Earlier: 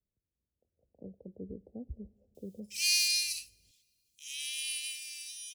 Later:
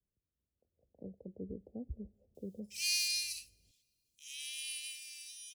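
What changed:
speech: send -6.0 dB; background -5.5 dB

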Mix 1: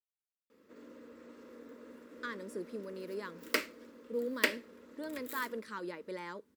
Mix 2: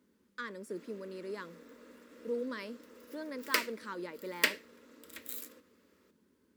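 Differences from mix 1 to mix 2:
speech: entry -1.85 s; background: add tilt shelf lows -4.5 dB, about 1.5 kHz

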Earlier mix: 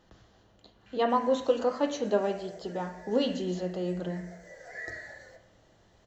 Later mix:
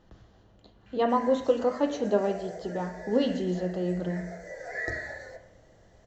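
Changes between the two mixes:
background +7.5 dB; master: add tilt EQ -1.5 dB/octave

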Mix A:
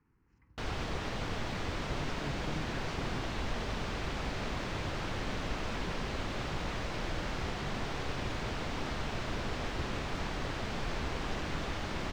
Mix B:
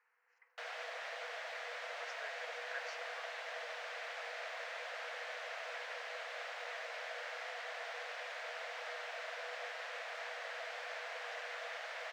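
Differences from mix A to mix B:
speech +8.5 dB; master: add rippled Chebyshev high-pass 470 Hz, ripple 9 dB

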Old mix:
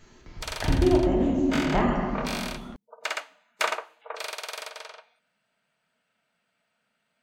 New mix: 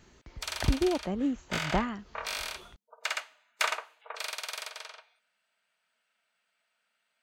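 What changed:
background: add high-pass 1.3 kHz 6 dB/octave; reverb: off

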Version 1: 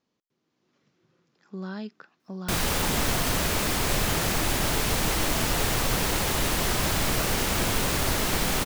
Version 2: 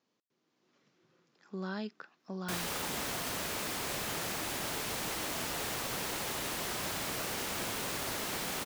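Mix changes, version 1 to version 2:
background -9.5 dB; master: add high-pass 250 Hz 6 dB/octave

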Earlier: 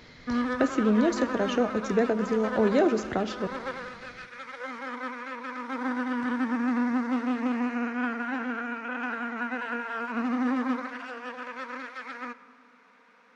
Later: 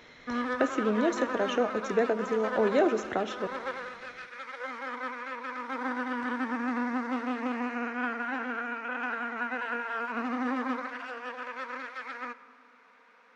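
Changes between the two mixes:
speech: add Butterworth band-stop 4.7 kHz, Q 5.2; master: add tone controls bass -11 dB, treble -3 dB

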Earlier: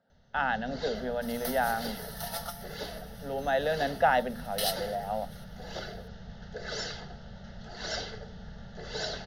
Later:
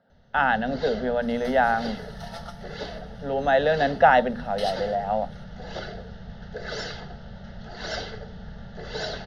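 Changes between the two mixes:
speech +8.0 dB; first sound +5.0 dB; master: add distance through air 110 m

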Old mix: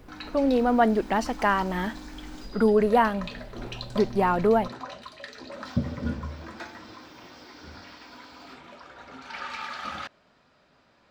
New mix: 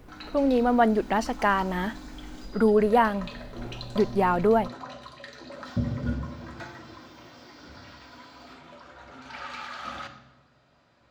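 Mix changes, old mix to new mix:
background -3.5 dB; reverb: on, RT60 1.1 s

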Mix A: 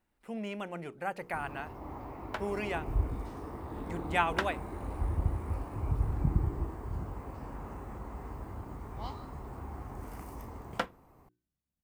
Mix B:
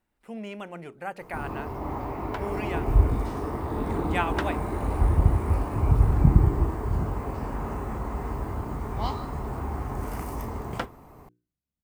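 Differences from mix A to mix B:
first sound +8.5 dB; reverb: on, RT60 0.35 s

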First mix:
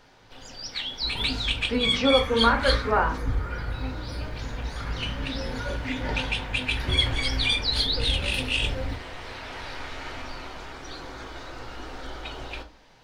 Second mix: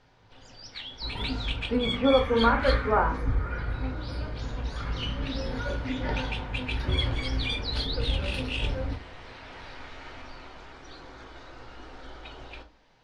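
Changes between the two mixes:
speech: add low-pass 1.5 kHz 12 dB/octave; first sound -6.5 dB; master: add distance through air 63 m

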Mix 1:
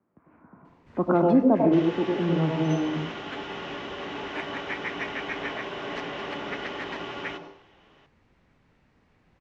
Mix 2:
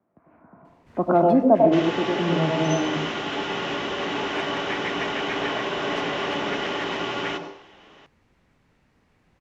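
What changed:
speech: add peaking EQ 670 Hz +9 dB 0.41 oct; second sound +7.5 dB; master: remove distance through air 68 m

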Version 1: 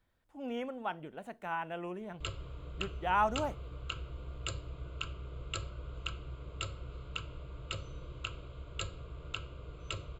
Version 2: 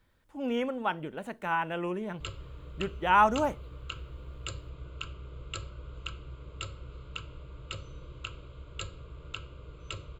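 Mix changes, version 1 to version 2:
speech +8.0 dB; master: add peaking EQ 710 Hz -8 dB 0.21 oct

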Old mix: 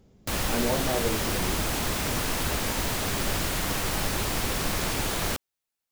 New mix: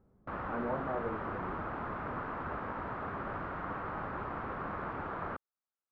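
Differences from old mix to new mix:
background: add high-pass 110 Hz 6 dB/octave; master: add four-pole ladder low-pass 1.5 kHz, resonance 50%

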